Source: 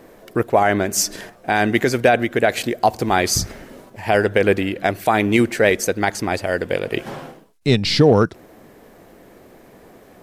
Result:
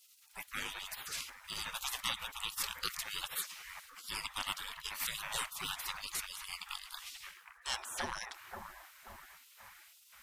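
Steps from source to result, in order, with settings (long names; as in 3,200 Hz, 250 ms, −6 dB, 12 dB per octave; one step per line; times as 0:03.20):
bucket-brigade delay 533 ms, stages 4,096, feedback 47%, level −6.5 dB
gate on every frequency bin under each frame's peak −30 dB weak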